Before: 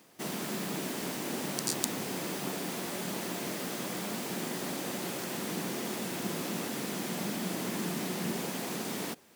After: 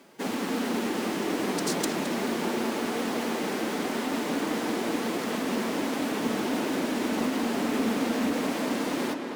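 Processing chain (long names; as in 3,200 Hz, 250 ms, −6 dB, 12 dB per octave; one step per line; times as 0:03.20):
high-shelf EQ 4,500 Hz −9.5 dB
phase-vocoder pitch shift with formants kept +4 semitones
on a send: tape delay 219 ms, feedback 77%, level −6 dB, low-pass 3,600 Hz
on the sum: highs frequency-modulated by the lows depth 0.3 ms
level +7.5 dB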